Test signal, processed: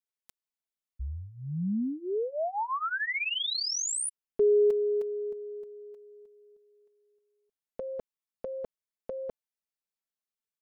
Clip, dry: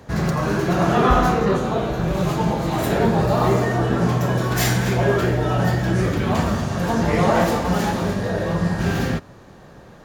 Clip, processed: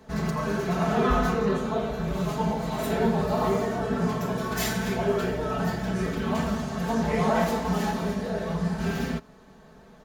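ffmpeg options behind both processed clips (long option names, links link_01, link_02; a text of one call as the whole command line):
ffmpeg -i in.wav -af "aecho=1:1:4.6:0.85,volume=-9dB" out.wav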